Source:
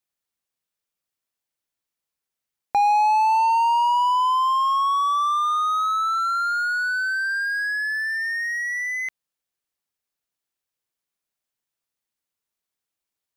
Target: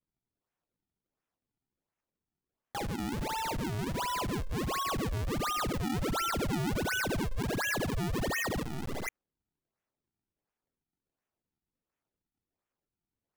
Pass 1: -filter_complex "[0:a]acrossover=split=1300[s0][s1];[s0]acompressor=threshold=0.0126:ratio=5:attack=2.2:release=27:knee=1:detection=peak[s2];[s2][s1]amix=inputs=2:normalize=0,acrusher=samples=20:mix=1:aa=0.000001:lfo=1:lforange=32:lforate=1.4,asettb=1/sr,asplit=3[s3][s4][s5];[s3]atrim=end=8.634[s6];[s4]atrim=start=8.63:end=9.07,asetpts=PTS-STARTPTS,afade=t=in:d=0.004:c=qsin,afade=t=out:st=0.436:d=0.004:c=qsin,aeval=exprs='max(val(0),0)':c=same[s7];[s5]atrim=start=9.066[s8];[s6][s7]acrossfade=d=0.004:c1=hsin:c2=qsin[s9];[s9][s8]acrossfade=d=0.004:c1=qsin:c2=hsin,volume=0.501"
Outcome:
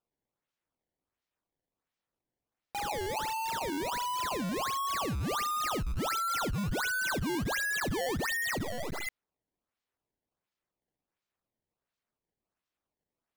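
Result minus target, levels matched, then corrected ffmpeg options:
decimation with a swept rate: distortion -11 dB
-filter_complex "[0:a]acrossover=split=1300[s0][s1];[s0]acompressor=threshold=0.0126:ratio=5:attack=2.2:release=27:knee=1:detection=peak[s2];[s2][s1]amix=inputs=2:normalize=0,acrusher=samples=47:mix=1:aa=0.000001:lfo=1:lforange=75.2:lforate=1.4,asettb=1/sr,asplit=3[s3][s4][s5];[s3]atrim=end=8.634[s6];[s4]atrim=start=8.63:end=9.07,asetpts=PTS-STARTPTS,afade=t=in:d=0.004:c=qsin,afade=t=out:st=0.436:d=0.004:c=qsin,aeval=exprs='max(val(0),0)':c=same[s7];[s5]atrim=start=9.066[s8];[s6][s7]acrossfade=d=0.004:c1=hsin:c2=qsin[s9];[s9][s8]acrossfade=d=0.004:c1=qsin:c2=hsin,volume=0.501"

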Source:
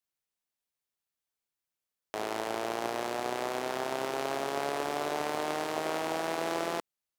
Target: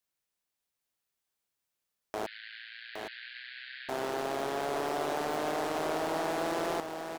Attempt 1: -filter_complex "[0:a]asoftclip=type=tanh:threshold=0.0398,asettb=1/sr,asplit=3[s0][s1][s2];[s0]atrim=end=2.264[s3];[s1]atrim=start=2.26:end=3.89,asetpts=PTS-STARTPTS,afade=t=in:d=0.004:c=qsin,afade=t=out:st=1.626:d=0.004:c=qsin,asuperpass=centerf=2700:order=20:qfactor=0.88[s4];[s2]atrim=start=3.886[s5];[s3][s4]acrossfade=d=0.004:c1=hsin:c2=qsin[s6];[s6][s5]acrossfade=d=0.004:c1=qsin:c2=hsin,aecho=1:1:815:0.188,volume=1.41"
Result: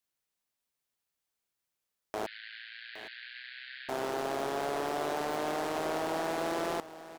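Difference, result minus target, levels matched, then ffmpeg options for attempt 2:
echo-to-direct -8.5 dB
-filter_complex "[0:a]asoftclip=type=tanh:threshold=0.0398,asettb=1/sr,asplit=3[s0][s1][s2];[s0]atrim=end=2.264[s3];[s1]atrim=start=2.26:end=3.89,asetpts=PTS-STARTPTS,afade=t=in:d=0.004:c=qsin,afade=t=out:st=1.626:d=0.004:c=qsin,asuperpass=centerf=2700:order=20:qfactor=0.88[s4];[s2]atrim=start=3.886[s5];[s3][s4]acrossfade=d=0.004:c1=hsin:c2=qsin[s6];[s6][s5]acrossfade=d=0.004:c1=qsin:c2=hsin,aecho=1:1:815:0.501,volume=1.41"

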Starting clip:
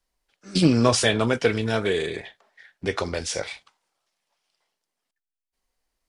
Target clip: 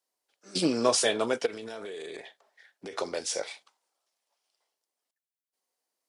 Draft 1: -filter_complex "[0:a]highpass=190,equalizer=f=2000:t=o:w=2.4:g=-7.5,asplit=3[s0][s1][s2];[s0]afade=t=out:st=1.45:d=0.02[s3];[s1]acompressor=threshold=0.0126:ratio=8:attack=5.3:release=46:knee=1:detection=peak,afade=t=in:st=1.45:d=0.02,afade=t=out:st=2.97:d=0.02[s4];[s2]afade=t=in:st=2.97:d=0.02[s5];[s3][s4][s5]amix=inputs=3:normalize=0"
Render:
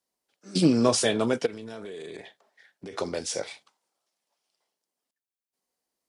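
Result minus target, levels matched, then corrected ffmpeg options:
250 Hz band +3.0 dB
-filter_complex "[0:a]highpass=410,equalizer=f=2000:t=o:w=2.4:g=-7.5,asplit=3[s0][s1][s2];[s0]afade=t=out:st=1.45:d=0.02[s3];[s1]acompressor=threshold=0.0126:ratio=8:attack=5.3:release=46:knee=1:detection=peak,afade=t=in:st=1.45:d=0.02,afade=t=out:st=2.97:d=0.02[s4];[s2]afade=t=in:st=2.97:d=0.02[s5];[s3][s4][s5]amix=inputs=3:normalize=0"

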